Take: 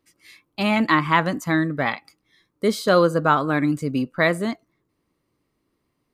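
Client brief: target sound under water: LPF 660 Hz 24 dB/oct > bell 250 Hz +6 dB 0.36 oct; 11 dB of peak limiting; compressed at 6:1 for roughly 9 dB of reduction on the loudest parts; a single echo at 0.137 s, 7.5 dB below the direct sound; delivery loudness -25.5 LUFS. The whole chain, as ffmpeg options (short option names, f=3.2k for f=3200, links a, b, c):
-af "acompressor=threshold=-22dB:ratio=6,alimiter=limit=-22.5dB:level=0:latency=1,lowpass=f=660:w=0.5412,lowpass=f=660:w=1.3066,equalizer=f=250:t=o:w=0.36:g=6,aecho=1:1:137:0.422,volume=5.5dB"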